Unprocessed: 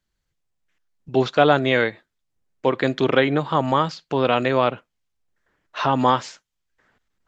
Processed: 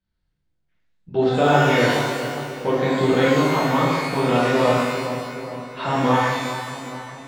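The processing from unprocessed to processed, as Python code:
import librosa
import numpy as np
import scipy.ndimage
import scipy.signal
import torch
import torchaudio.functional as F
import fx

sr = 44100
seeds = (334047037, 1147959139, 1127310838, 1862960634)

p1 = scipy.signal.sosfilt(scipy.signal.butter(6, 5100.0, 'lowpass', fs=sr, output='sos'), x)
p2 = fx.low_shelf(p1, sr, hz=410.0, db=7.5)
p3 = p2 + fx.echo_filtered(p2, sr, ms=413, feedback_pct=59, hz=2000.0, wet_db=-10.0, dry=0)
p4 = fx.rev_shimmer(p3, sr, seeds[0], rt60_s=1.2, semitones=12, shimmer_db=-8, drr_db=-7.5)
y = p4 * librosa.db_to_amplitude(-10.5)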